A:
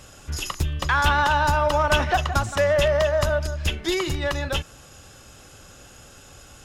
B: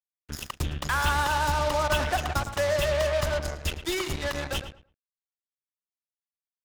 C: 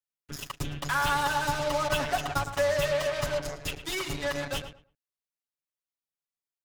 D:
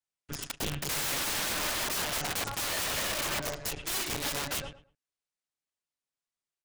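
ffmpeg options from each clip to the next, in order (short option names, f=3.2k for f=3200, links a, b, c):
-filter_complex "[0:a]acrusher=bits=3:mix=0:aa=0.5,asplit=2[a][b];[b]adelay=110,lowpass=f=2.7k:p=1,volume=-9.5dB,asplit=2[c][d];[d]adelay=110,lowpass=f=2.7k:p=1,volume=0.2,asplit=2[e][f];[f]adelay=110,lowpass=f=2.7k:p=1,volume=0.2[g];[c][e][g]amix=inputs=3:normalize=0[h];[a][h]amix=inputs=2:normalize=0,volume=-6dB"
-af "aecho=1:1:7.1:0.96,volume=-4.5dB"
-af "aresample=22050,aresample=44100,aeval=exprs='(mod(25.1*val(0)+1,2)-1)/25.1':c=same,volume=1dB"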